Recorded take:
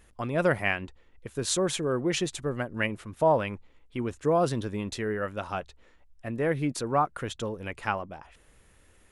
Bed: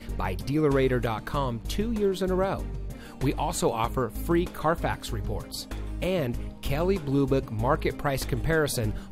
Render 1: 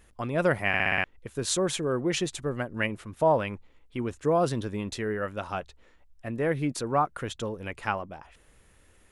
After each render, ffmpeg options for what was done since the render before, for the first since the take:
-filter_complex "[0:a]asplit=7[a][b][c][d][e][f][g];[a]atrim=end=0.742[h];[b]atrim=start=0.678:end=0.742[i];[c]atrim=start=0.678:end=0.742[j];[d]atrim=start=0.678:end=0.742[k];[e]atrim=start=0.678:end=0.742[l];[f]atrim=start=0.678:end=0.742[m];[g]atrim=start=1.038[n];[h][i]acrossfade=d=0.004:c1=hsin:c2=hsin[o];[o][j]acrossfade=d=0.004:c1=hsin:c2=hsin[p];[p][k]acrossfade=d=0.004:c1=hsin:c2=hsin[q];[q][l]acrossfade=d=0.004:c1=hsin:c2=hsin[r];[r][m]acrossfade=d=0.004:c1=hsin:c2=hsin[s];[s][n]acrossfade=d=0.004:c1=hsin:c2=hsin"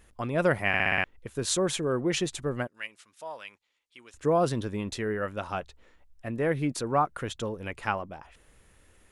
-filter_complex "[0:a]asettb=1/sr,asplit=3[a][b][c];[a]atrim=end=2.674[d];[b]atrim=start=2.67:end=4.14,asetpts=PTS-STARTPTS,afade=t=in:d=0.004:c=qsin,afade=t=out:st=1.466:d=0.004:c=qsin,bandpass=f=5.8k:t=q:w=0.86[e];[c]atrim=start=4.136[f];[d][e]acrossfade=d=0.004:c1=hsin:c2=qsin[g];[g][f]acrossfade=d=0.004:c1=qsin:c2=hsin"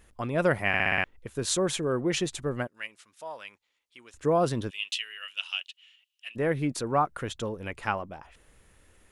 -filter_complex "[0:a]asplit=3[a][b][c];[a]afade=t=out:st=4.69:d=0.02[d];[b]highpass=f=2.9k:t=q:w=12,afade=t=in:st=4.69:d=0.02,afade=t=out:st=6.35:d=0.02[e];[c]afade=t=in:st=6.35:d=0.02[f];[d][e][f]amix=inputs=3:normalize=0"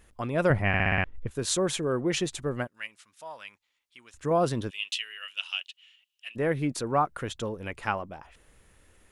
-filter_complex "[0:a]asettb=1/sr,asplit=3[a][b][c];[a]atrim=end=0.504[d];[b]atrim=start=0.5:end=1.31,asetpts=PTS-STARTPTS,afade=t=in:d=0.004:c=qsin,afade=t=out:st=0.806:d=0.004:c=qsin,aemphasis=mode=reproduction:type=bsi[e];[c]atrim=start=1.306[f];[d][e]acrossfade=d=0.004:c1=hsin:c2=qsin[g];[g][f]acrossfade=d=0.004:c1=qsin:c2=hsin,asettb=1/sr,asplit=3[h][i][j];[h]atrim=end=2.644[k];[i]atrim=start=2.64:end=4.31,asetpts=PTS-STARTPTS,afade=t=in:d=0.004:c=qsin,afade=t=out:st=1.666:d=0.004:c=qsin,equalizer=f=420:t=o:w=1.3:g=-6[l];[j]atrim=start=4.306[m];[k][l]acrossfade=d=0.004:c1=hsin:c2=qsin[n];[n][m]acrossfade=d=0.004:c1=qsin:c2=hsin"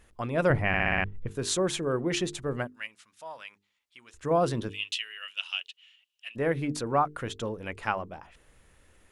-af "highshelf=f=8.7k:g=-4.5,bandreject=f=50:t=h:w=6,bandreject=f=100:t=h:w=6,bandreject=f=150:t=h:w=6,bandreject=f=200:t=h:w=6,bandreject=f=250:t=h:w=6,bandreject=f=300:t=h:w=6,bandreject=f=350:t=h:w=6,bandreject=f=400:t=h:w=6,bandreject=f=450:t=h:w=6"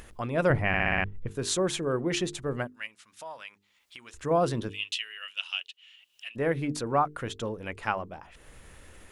-af "acompressor=mode=upward:threshold=-39dB:ratio=2.5"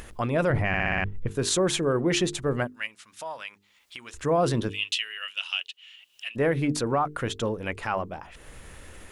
-af "acontrast=34,alimiter=limit=-15.5dB:level=0:latency=1:release=14"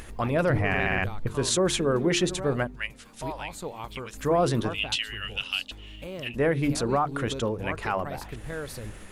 -filter_complex "[1:a]volume=-11dB[a];[0:a][a]amix=inputs=2:normalize=0"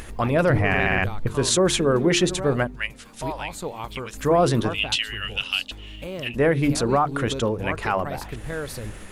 -af "volume=4.5dB"

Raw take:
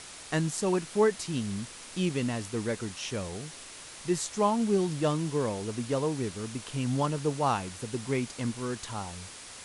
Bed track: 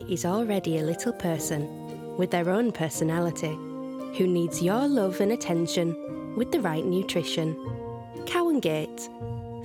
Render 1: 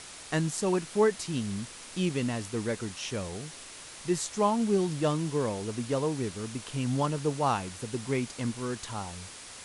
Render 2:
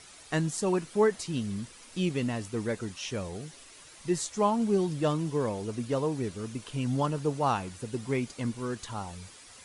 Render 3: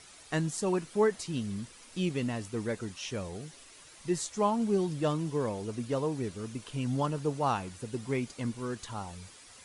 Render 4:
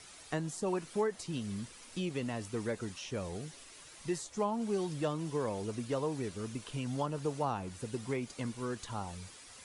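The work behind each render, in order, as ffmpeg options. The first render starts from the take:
-af anull
-af "afftdn=nr=9:nf=-46"
-af "volume=-2dB"
-filter_complex "[0:a]acrossover=split=450|1000[a][b][c];[a]acompressor=threshold=-36dB:ratio=4[d];[b]acompressor=threshold=-34dB:ratio=4[e];[c]acompressor=threshold=-43dB:ratio=4[f];[d][e][f]amix=inputs=3:normalize=0"

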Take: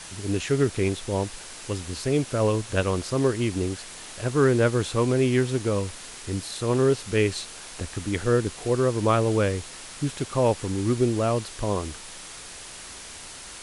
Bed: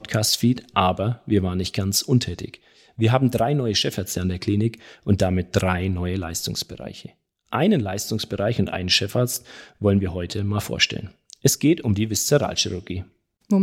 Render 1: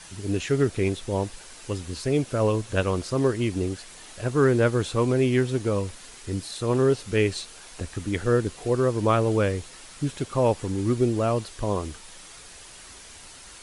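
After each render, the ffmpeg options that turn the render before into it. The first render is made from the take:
-af "afftdn=nr=6:nf=-41"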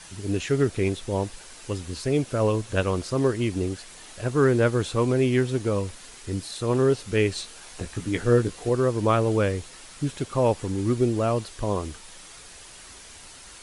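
-filter_complex "[0:a]asettb=1/sr,asplit=3[a][b][c];[a]atrim=end=7.364[d];[b]atrim=start=7.36:end=8.69,asetpts=PTS-STARTPTS,afade=t=in:d=0.004:c=qsin,afade=t=out:st=1.326:d=0.004:c=qsin,asplit=2[e][f];[f]adelay=17,volume=-6.5dB[g];[e][g]amix=inputs=2:normalize=0,atrim=end_sample=58653[h];[c]atrim=start=8.686[i];[d][h]acrossfade=d=0.004:c1=hsin:c2=qsin[j];[j][i]acrossfade=d=0.004:c1=qsin:c2=hsin"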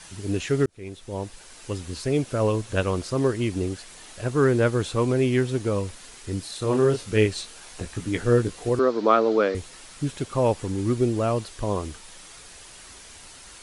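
-filter_complex "[0:a]asettb=1/sr,asplit=3[a][b][c];[a]atrim=end=6.594[d];[b]atrim=start=6.59:end=7.26,asetpts=PTS-STARTPTS,afade=t=in:d=0.004:c=qsin,afade=t=out:st=0.666:d=0.004:c=qsin,asplit=2[e][f];[f]adelay=28,volume=-6dB[g];[e][g]amix=inputs=2:normalize=0,atrim=end_sample=29547[h];[c]atrim=start=7.256[i];[d][h]acrossfade=d=0.004:c1=hsin:c2=qsin[j];[j][i]acrossfade=d=0.004:c1=qsin:c2=hsin,asettb=1/sr,asplit=3[k][l][m];[k]atrim=end=8.794[n];[l]atrim=start=8.79:end=9.55,asetpts=PTS-STARTPTS,afade=t=in:d=0.004:c=qsin,afade=t=out:st=0.756:d=0.004:c=qsin,highpass=f=230:w=0.5412,highpass=f=230:w=1.3066,equalizer=f=240:t=q:w=4:g=4,equalizer=f=440:t=q:w=4:g=4,equalizer=f=690:t=q:w=4:g=4,equalizer=f=1.3k:t=q:w=4:g=7,equalizer=f=2.8k:t=q:w=4:g=-4,equalizer=f=4.1k:t=q:w=4:g=6,lowpass=f=5.5k:w=0.5412,lowpass=f=5.5k:w=1.3066[o];[m]atrim=start=9.546[p];[n][o]acrossfade=d=0.004:c1=hsin:c2=qsin[q];[q][p]acrossfade=d=0.004:c1=qsin:c2=hsin,asplit=2[r][s];[r]atrim=end=0.66,asetpts=PTS-STARTPTS,afade=t=out:st=0.656:d=0.004:c=hsin[t];[s]atrim=start=0.66,asetpts=PTS-STARTPTS,afade=t=in:d=1.37:c=qsin[u];[t][u]concat=n=2:v=0:a=1"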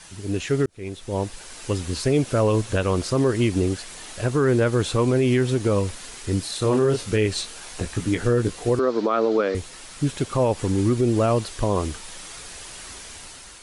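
-af "dynaudnorm=f=300:g=5:m=6.5dB,alimiter=limit=-11.5dB:level=0:latency=1:release=98"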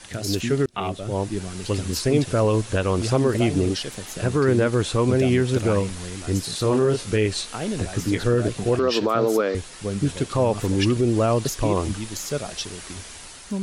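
-filter_complex "[1:a]volume=-9.5dB[a];[0:a][a]amix=inputs=2:normalize=0"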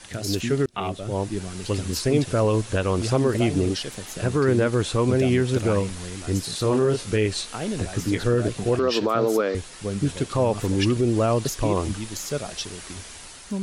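-af "volume=-1dB"

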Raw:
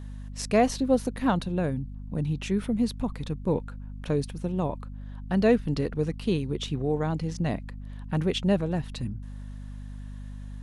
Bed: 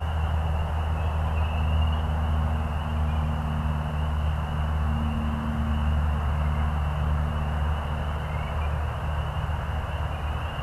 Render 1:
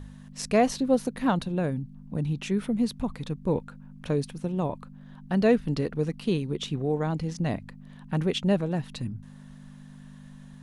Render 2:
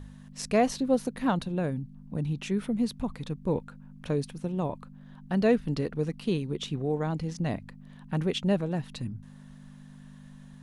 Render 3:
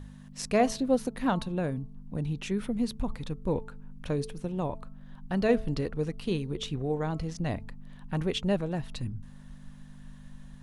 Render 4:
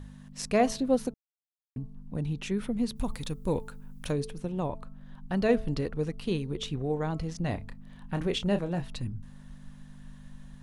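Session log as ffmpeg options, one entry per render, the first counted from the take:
-af "bandreject=f=50:t=h:w=4,bandreject=f=100:t=h:w=4"
-af "volume=-2dB"
-af "bandreject=f=219.2:t=h:w=4,bandreject=f=438.4:t=h:w=4,bandreject=f=657.6:t=h:w=4,bandreject=f=876.8:t=h:w=4,bandreject=f=1.096k:t=h:w=4,bandreject=f=1.3152k:t=h:w=4,asubboost=boost=3.5:cutoff=81"
-filter_complex "[0:a]asplit=3[a][b][c];[a]afade=t=out:st=2.95:d=0.02[d];[b]aemphasis=mode=production:type=75kf,afade=t=in:st=2.95:d=0.02,afade=t=out:st=4.11:d=0.02[e];[c]afade=t=in:st=4.11:d=0.02[f];[d][e][f]amix=inputs=3:normalize=0,asettb=1/sr,asplit=3[g][h][i];[g]atrim=end=7.414[j];[h]atrim=start=7.41:end=8.89,asetpts=PTS-STARTPTS,afade=t=in:d=0.004:c=qsin,afade=t=out:st=1.476:d=0.004:c=qsin,asplit=2[k][l];[l]adelay=29,volume=-9dB[m];[k][m]amix=inputs=2:normalize=0,atrim=end_sample=65268[n];[i]atrim=start=8.886[o];[j][n]acrossfade=d=0.004:c1=hsin:c2=qsin[p];[p][o]acrossfade=d=0.004:c1=qsin:c2=hsin,asplit=3[q][r][s];[q]atrim=end=1.14,asetpts=PTS-STARTPTS,afade=t=out:st=1.136:d=0.004:c=hsin[t];[r]atrim=start=1.14:end=1.76,asetpts=PTS-STARTPTS,volume=0[u];[s]atrim=start=1.76,asetpts=PTS-STARTPTS,afade=t=in:d=0.004:c=hsin[v];[t][u][v]concat=n=3:v=0:a=1"

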